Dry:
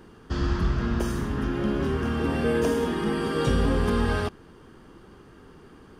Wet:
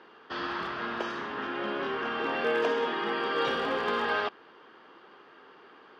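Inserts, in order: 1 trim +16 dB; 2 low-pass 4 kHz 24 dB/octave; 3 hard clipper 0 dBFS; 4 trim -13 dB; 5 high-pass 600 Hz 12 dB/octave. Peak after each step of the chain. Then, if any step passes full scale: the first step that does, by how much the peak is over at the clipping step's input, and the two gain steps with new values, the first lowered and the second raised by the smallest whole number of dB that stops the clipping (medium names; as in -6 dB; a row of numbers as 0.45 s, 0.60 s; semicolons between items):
+5.5 dBFS, +5.5 dBFS, 0.0 dBFS, -13.0 dBFS, -16.0 dBFS; step 1, 5.5 dB; step 1 +10 dB, step 4 -7 dB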